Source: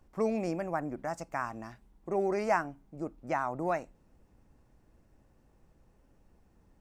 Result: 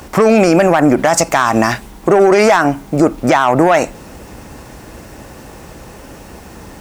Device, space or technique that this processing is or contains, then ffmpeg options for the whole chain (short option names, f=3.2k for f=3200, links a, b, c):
mastering chain: -af "highpass=44,equalizer=f=460:t=o:w=2.5:g=4,acompressor=threshold=-30dB:ratio=3,asoftclip=type=tanh:threshold=-25.5dB,tiltshelf=f=1.1k:g=-6,asoftclip=type=hard:threshold=-26.5dB,alimiter=level_in=35dB:limit=-1dB:release=50:level=0:latency=1,volume=-1dB"